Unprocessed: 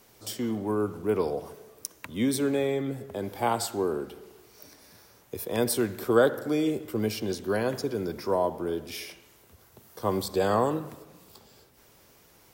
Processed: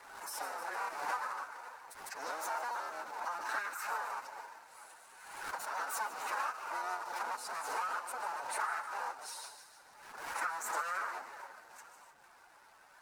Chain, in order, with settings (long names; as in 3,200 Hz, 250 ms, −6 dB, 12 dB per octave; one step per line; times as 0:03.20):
sub-harmonics by changed cycles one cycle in 3, inverted
dynamic equaliser 720 Hz, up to +7 dB, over −44 dBFS, Q 4.4
downward compressor 6 to 1, threshold −38 dBFS, peak gain reduction 21.5 dB
hard clipping −28 dBFS, distortion −28 dB
time stretch by phase vocoder 1.8×
loudspeaker in its box 380–7,400 Hz, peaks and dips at 520 Hz +8 dB, 860 Hz +9 dB, 1,900 Hz −10 dB
on a send: delay with a high-pass on its return 263 ms, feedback 60%, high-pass 2,300 Hz, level −8 dB
on the sum: slack as between gear wheels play −58.5 dBFS
wrong playback speed 45 rpm record played at 78 rpm
background raised ahead of every attack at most 50 dB per second
level +1 dB